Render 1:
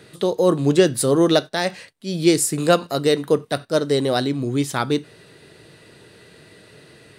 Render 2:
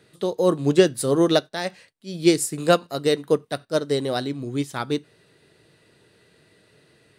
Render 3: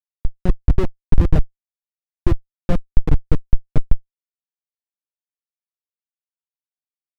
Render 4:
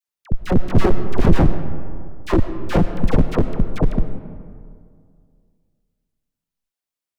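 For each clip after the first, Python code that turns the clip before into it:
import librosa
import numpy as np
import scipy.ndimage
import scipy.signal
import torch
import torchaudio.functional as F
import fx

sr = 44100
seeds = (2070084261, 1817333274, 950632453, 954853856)

y1 = fx.upward_expand(x, sr, threshold_db=-30.0, expansion=1.5)
y2 = fx.dmg_noise_band(y1, sr, seeds[0], low_hz=93.0, high_hz=860.0, level_db=-35.0)
y2 = fx.schmitt(y2, sr, flips_db=-13.0)
y2 = fx.riaa(y2, sr, side='playback')
y3 = fx.dispersion(y2, sr, late='lows', ms=70.0, hz=880.0)
y3 = 10.0 ** (-13.0 / 20.0) * (np.abs((y3 / 10.0 ** (-13.0 / 20.0) + 3.0) % 4.0 - 2.0) - 1.0)
y3 = fx.rev_freeverb(y3, sr, rt60_s=2.2, hf_ratio=0.45, predelay_ms=60, drr_db=9.5)
y3 = F.gain(torch.from_numpy(y3), 6.5).numpy()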